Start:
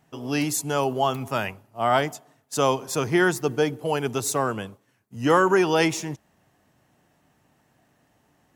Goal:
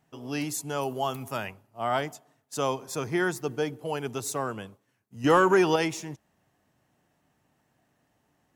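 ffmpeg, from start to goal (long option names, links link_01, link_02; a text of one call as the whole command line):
ffmpeg -i in.wav -filter_complex "[0:a]asettb=1/sr,asplit=3[link_01][link_02][link_03];[link_01]atrim=end=0.814[link_04];[link_02]atrim=start=0.81:end=1.37,asetpts=PTS-STARTPTS,afade=type=in:duration=0.004:curve=qsin,afade=type=out:start_time=0.556:duration=0.004:curve=qsin,equalizer=frequency=13000:width=0.49:gain=8.5[link_05];[link_03]atrim=start=1.366[link_06];[link_04][link_05]acrossfade=duration=0.004:curve1=hsin:curve2=qsin[link_07];[link_07][link_06]acrossfade=duration=0.004:curve1=qsin:curve2=hsin,asettb=1/sr,asplit=3[link_08][link_09][link_10];[link_08]atrim=end=2.684[link_11];[link_09]atrim=start=2.68:end=3.38,asetpts=PTS-STARTPTS,afade=type=in:duration=0.004:curve=qsin,afade=type=out:start_time=0.696:duration=0.004:curve=qsin,bandreject=frequency=2900:width=12[link_12];[link_10]atrim=start=3.376[link_13];[link_11][link_12]acrossfade=duration=0.004:curve1=hsin:curve2=qsin[link_14];[link_14][link_13]acrossfade=duration=0.004:curve1=qsin:curve2=hsin,asettb=1/sr,asplit=3[link_15][link_16][link_17];[link_15]atrim=end=5.244[link_18];[link_16]atrim=start=5.24:end=5.76,asetpts=PTS-STARTPTS,afade=type=in:duration=0.004:curve=qsin,afade=type=out:start_time=0.516:duration=0.004:curve=qsin,acontrast=43[link_19];[link_17]atrim=start=5.756[link_20];[link_18][link_19]acrossfade=duration=0.004:curve1=hsin:curve2=qsin[link_21];[link_21][link_20]acrossfade=duration=0.004:curve1=qsin:curve2=hsin,volume=-6.5dB" out.wav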